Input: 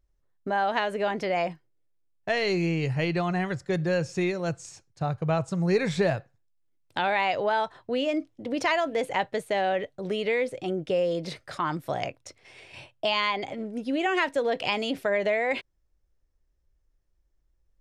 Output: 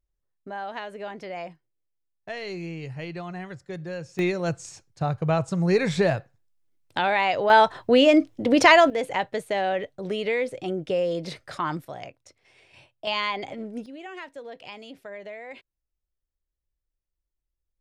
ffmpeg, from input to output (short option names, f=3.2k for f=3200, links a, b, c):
-af "asetnsamples=n=441:p=0,asendcmd='4.19 volume volume 2.5dB;7.5 volume volume 10.5dB;8.9 volume volume 0.5dB;11.85 volume volume -8dB;13.07 volume volume -1dB;13.86 volume volume -14dB',volume=-8.5dB"